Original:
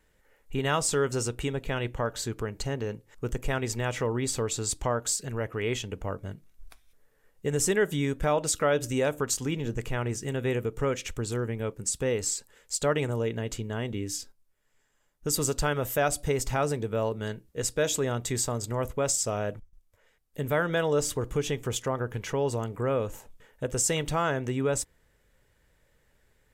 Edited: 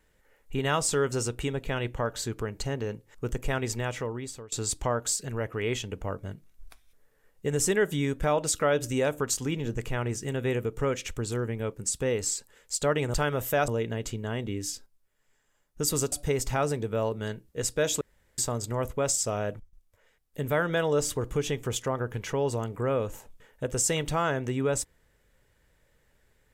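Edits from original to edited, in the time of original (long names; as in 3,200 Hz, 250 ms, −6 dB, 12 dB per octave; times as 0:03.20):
0:03.72–0:04.52: fade out, to −22.5 dB
0:15.58–0:16.12: move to 0:13.14
0:18.01–0:18.38: fill with room tone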